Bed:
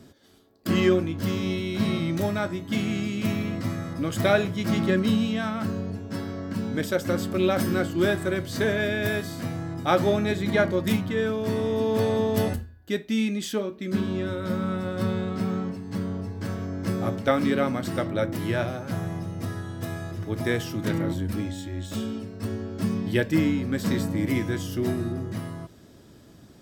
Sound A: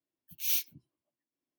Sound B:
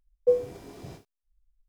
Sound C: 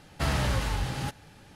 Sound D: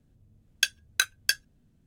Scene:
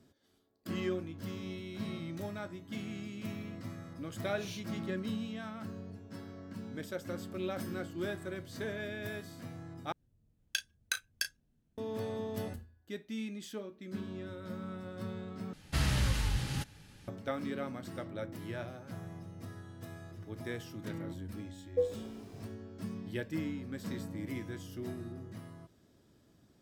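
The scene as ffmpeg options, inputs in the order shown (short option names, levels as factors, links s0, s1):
-filter_complex "[0:a]volume=0.188[s0];[1:a]lowpass=5200[s1];[4:a]asplit=2[s2][s3];[s3]adelay=34,volume=0.316[s4];[s2][s4]amix=inputs=2:normalize=0[s5];[3:a]equalizer=f=730:w=0.62:g=-9.5[s6];[s0]asplit=3[s7][s8][s9];[s7]atrim=end=9.924[s10];[s5]atrim=end=1.86,asetpts=PTS-STARTPTS,volume=0.299[s11];[s8]atrim=start=11.776:end=15.534[s12];[s6]atrim=end=1.55,asetpts=PTS-STARTPTS,volume=0.841[s13];[s9]atrim=start=17.076[s14];[s1]atrim=end=1.58,asetpts=PTS-STARTPTS,volume=0.398,afade=t=in:d=0.004:c=hsin,afade=t=out:st=1.576:d=0.004:c=hsin,adelay=3980[s15];[2:a]atrim=end=1.68,asetpts=PTS-STARTPTS,volume=0.376,afade=t=in:d=0.004:c=hsin,afade=t=out:st=1.676:d=0.004:c=hsin,adelay=21500[s16];[s10][s11]acrossfade=d=0.004:c1=hsin:c2=hsin[s17];[s17][s12]acrossfade=d=0.004:c1=hsin:c2=hsin[s18];[s18][s13]acrossfade=d=0.004:c1=hsin:c2=hsin[s19];[s19][s14]acrossfade=d=0.004:c1=hsin:c2=hsin[s20];[s20][s15][s16]amix=inputs=3:normalize=0"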